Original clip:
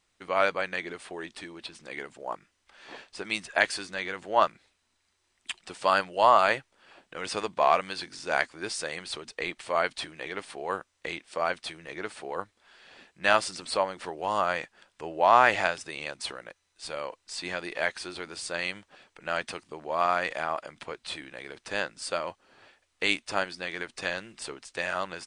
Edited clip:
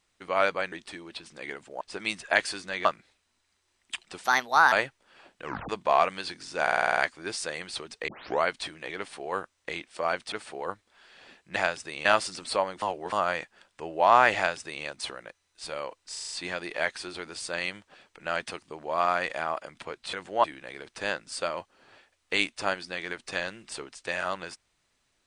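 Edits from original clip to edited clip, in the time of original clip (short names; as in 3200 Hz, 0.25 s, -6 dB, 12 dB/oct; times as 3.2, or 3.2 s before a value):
0.72–1.21 cut
2.3–3.06 cut
4.1–4.41 move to 21.14
5.8–6.44 speed 133%
7.16 tape stop 0.25 s
8.34 stutter 0.05 s, 8 plays
9.45 tape start 0.34 s
11.69–12.02 cut
14.03–14.33 reverse
15.57–16.06 copy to 13.26
17.32 stutter 0.04 s, 6 plays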